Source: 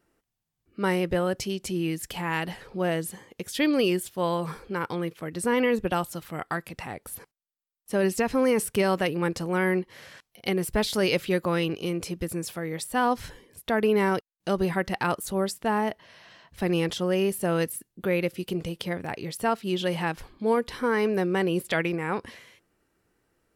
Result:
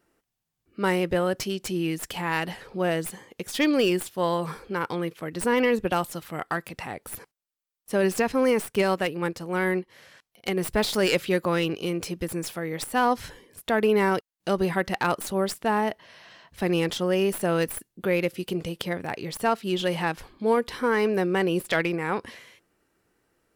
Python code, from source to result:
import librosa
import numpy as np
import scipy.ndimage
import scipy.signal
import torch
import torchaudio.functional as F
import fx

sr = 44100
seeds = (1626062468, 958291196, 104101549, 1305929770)

y = fx.tracing_dist(x, sr, depth_ms=0.059)
y = fx.low_shelf(y, sr, hz=150.0, db=-5.0)
y = fx.upward_expand(y, sr, threshold_db=-34.0, expansion=1.5, at=(8.32, 10.57))
y = y * 10.0 ** (2.0 / 20.0)